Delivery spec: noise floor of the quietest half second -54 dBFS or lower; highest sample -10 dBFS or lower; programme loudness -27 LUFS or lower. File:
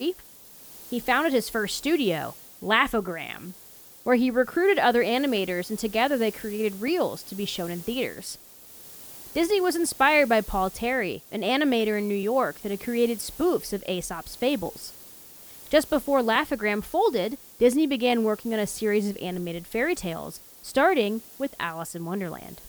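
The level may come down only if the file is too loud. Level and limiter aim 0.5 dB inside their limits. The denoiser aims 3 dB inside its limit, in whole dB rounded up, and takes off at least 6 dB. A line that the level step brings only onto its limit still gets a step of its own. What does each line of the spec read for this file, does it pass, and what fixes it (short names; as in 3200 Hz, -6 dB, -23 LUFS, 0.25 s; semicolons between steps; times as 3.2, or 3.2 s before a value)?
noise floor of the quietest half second -48 dBFS: fail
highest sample -6.5 dBFS: fail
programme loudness -25.5 LUFS: fail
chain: denoiser 7 dB, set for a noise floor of -48 dBFS; gain -2 dB; limiter -10.5 dBFS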